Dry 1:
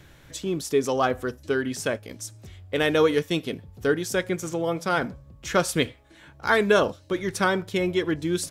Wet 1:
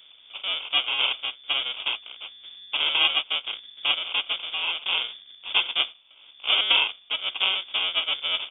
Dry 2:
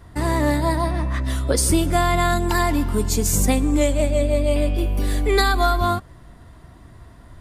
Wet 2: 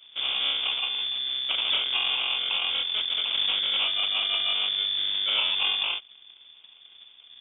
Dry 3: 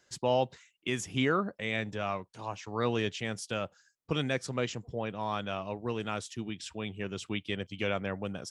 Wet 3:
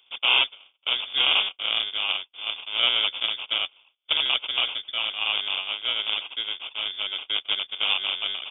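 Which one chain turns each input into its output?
cycle switcher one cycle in 2, inverted; sample-rate reducer 1700 Hz, jitter 0%; inverted band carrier 3500 Hz; match loudness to -24 LUFS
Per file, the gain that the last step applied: -2.0, -9.0, +7.0 dB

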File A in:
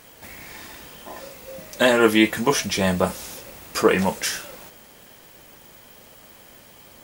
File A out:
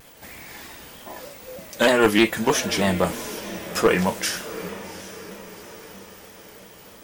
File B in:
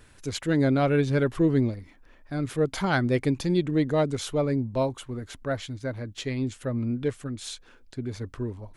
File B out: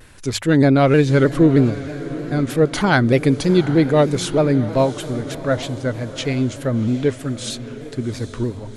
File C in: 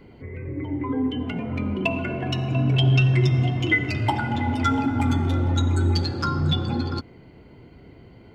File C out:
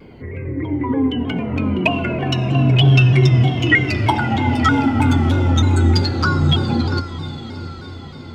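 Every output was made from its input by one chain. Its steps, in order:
one-sided fold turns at -9 dBFS; notches 50/100 Hz; diffused feedback echo 0.763 s, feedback 53%, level -14 dB; shaped vibrato saw down 3.2 Hz, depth 100 cents; normalise peaks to -2 dBFS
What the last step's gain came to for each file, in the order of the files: -0.5, +9.0, +6.5 dB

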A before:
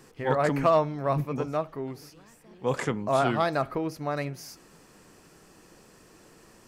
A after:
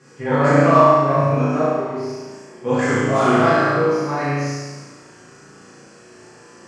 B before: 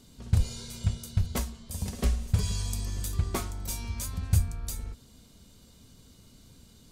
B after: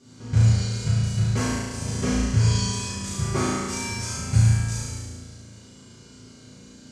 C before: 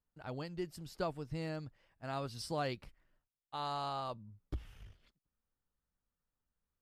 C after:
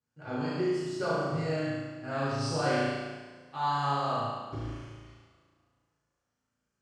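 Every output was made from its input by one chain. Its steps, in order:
speaker cabinet 110–7600 Hz, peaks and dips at 780 Hz -6 dB, 1500 Hz +3 dB, 3700 Hz -9 dB; flutter echo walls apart 6.1 m, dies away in 1.1 s; two-slope reverb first 0.97 s, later 2.5 s, from -18 dB, DRR -8.5 dB; gain -2 dB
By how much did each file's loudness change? +10.5, +8.0, +10.0 LU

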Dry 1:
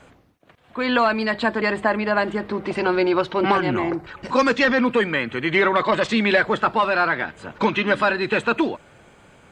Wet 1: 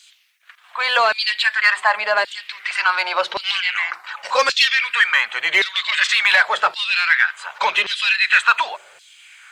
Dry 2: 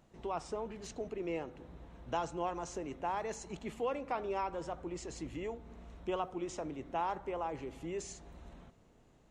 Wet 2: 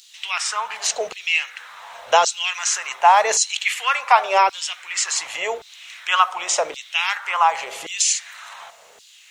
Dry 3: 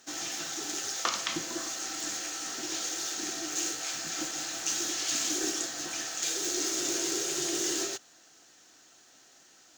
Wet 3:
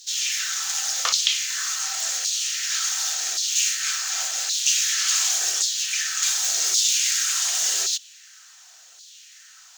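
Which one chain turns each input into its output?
passive tone stack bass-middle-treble 10-0-10; notches 50/100/150/200/250/300/350/400 Hz; in parallel at -3.5 dB: soft clip -25.5 dBFS; on the sum: LFO high-pass saw down 0.89 Hz 400–4300 Hz; normalise peaks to -2 dBFS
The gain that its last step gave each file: +6.5, +24.5, +6.0 dB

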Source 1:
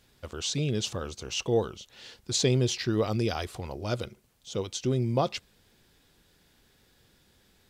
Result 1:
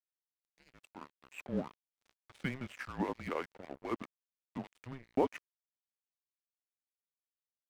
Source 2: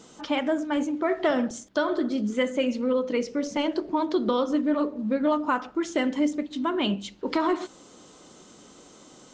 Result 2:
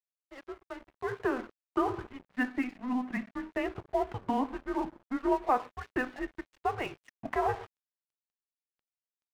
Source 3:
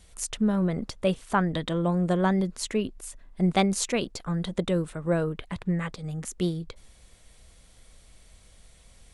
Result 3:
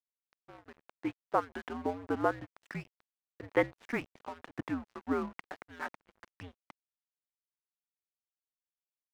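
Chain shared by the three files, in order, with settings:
opening faded in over 1.87 s; mistuned SSB -260 Hz 560–2500 Hz; crossover distortion -47 dBFS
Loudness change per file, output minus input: -10.5, -7.0, -8.5 LU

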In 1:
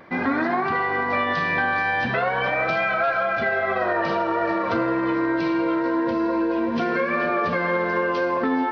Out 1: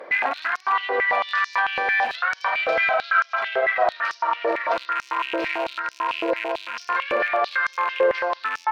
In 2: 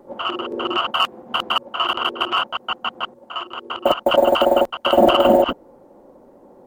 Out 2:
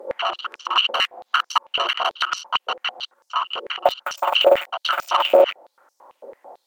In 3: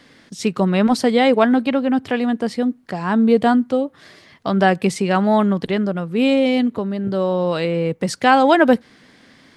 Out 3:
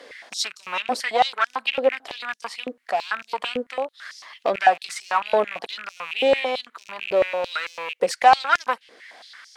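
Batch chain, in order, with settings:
rattling part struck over -30 dBFS, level -23 dBFS; compressor 1.5:1, threshold -35 dBFS; added harmonics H 4 -17 dB, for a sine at -9.5 dBFS; stepped high-pass 9 Hz 500–5600 Hz; gain +2.5 dB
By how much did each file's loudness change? -0.5, -2.0, -6.0 LU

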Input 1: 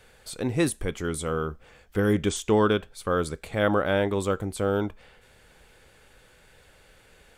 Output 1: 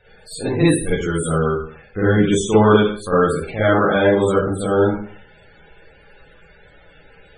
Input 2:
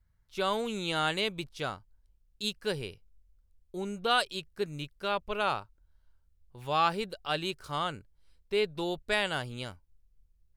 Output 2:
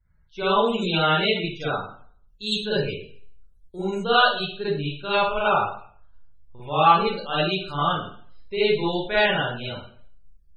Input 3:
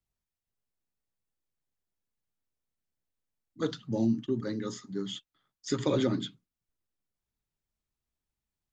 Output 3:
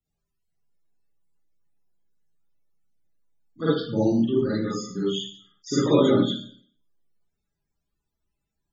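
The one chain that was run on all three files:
Schroeder reverb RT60 0.53 s, DRR -9 dB; loudest bins only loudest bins 64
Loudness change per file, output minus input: +9.0, +9.0, +8.5 LU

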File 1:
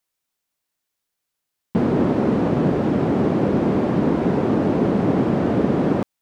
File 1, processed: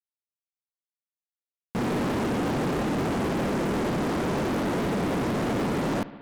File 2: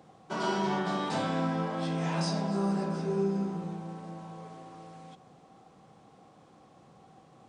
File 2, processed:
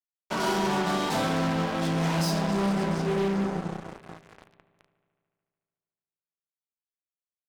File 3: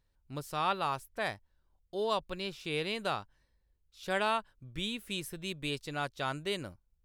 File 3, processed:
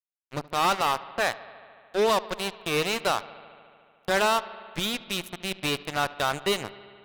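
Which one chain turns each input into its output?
fuzz box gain 32 dB, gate -38 dBFS; analogue delay 73 ms, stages 2048, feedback 80%, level -20 dB; match loudness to -27 LUFS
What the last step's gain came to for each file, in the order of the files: -12.0, -9.0, -4.0 dB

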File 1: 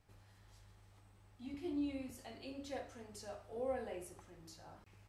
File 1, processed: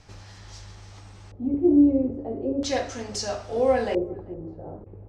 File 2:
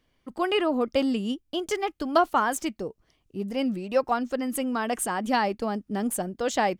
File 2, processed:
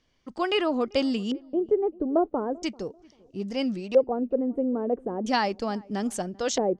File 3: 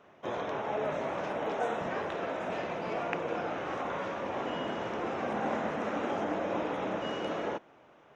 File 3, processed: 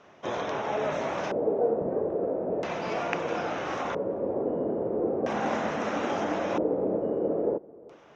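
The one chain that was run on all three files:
LFO low-pass square 0.38 Hz 460–5900 Hz; darkening echo 0.39 s, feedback 33%, low-pass 1000 Hz, level -23.5 dB; normalise peaks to -9 dBFS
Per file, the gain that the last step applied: +18.5, -1.0, +3.5 dB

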